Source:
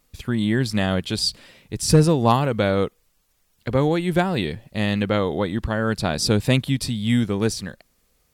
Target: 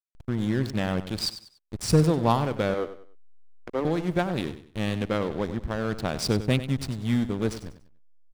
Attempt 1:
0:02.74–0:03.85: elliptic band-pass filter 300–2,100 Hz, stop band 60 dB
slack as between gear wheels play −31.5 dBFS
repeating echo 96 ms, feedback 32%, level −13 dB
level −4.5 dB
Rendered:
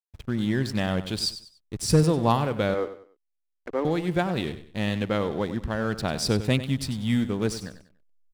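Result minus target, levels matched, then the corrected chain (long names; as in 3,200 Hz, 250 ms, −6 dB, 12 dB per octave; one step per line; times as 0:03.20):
slack as between gear wheels: distortion −9 dB
0:02.74–0:03.85: elliptic band-pass filter 300–2,100 Hz, stop band 60 dB
slack as between gear wheels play −21.5 dBFS
repeating echo 96 ms, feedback 32%, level −13 dB
level −4.5 dB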